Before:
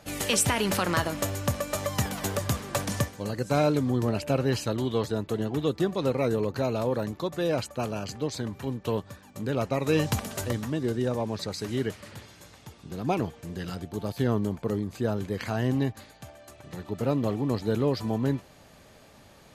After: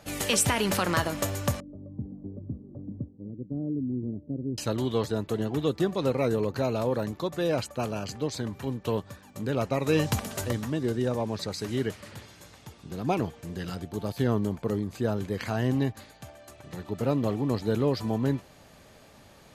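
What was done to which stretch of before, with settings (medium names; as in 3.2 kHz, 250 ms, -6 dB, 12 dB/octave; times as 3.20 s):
1.60–4.58 s: four-pole ladder low-pass 350 Hz, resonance 45%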